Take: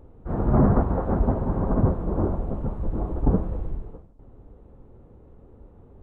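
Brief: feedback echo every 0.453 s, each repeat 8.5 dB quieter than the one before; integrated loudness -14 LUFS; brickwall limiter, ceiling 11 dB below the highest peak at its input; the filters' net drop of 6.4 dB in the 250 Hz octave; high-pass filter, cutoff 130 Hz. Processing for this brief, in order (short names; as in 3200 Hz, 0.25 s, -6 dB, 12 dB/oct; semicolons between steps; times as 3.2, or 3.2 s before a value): HPF 130 Hz; bell 250 Hz -8 dB; limiter -23.5 dBFS; feedback echo 0.453 s, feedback 38%, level -8.5 dB; gain +20 dB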